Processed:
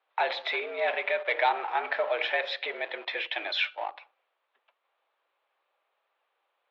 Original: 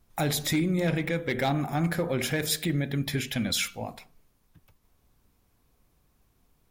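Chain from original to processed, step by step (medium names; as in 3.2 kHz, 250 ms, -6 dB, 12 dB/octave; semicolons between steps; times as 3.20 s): in parallel at -3.5 dB: small samples zeroed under -35 dBFS; on the sum: mistuned SSB +91 Hz 480–3400 Hz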